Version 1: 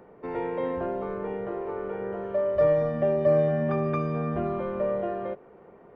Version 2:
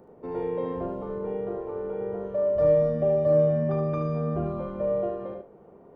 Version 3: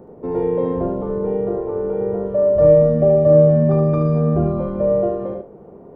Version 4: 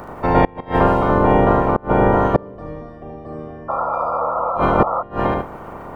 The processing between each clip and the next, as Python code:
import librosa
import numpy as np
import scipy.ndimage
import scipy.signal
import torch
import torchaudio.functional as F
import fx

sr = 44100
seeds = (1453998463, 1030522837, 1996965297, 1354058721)

y1 = fx.peak_eq(x, sr, hz=2000.0, db=-11.5, octaves=1.7)
y1 = fx.doubler(y1, sr, ms=39.0, db=-9.5)
y1 = y1 + 10.0 ** (-6.0 / 20.0) * np.pad(y1, (int(75 * sr / 1000.0), 0))[:len(y1)]
y2 = fx.tilt_shelf(y1, sr, db=5.5, hz=970.0)
y2 = F.gain(torch.from_numpy(y2), 6.5).numpy()
y3 = fx.spec_clip(y2, sr, under_db=27)
y3 = fx.gate_flip(y3, sr, shuts_db=-10.0, range_db=-28)
y3 = fx.spec_paint(y3, sr, seeds[0], shape='noise', start_s=3.68, length_s=1.35, low_hz=470.0, high_hz=1400.0, level_db=-29.0)
y3 = F.gain(torch.from_numpy(y3), 8.0).numpy()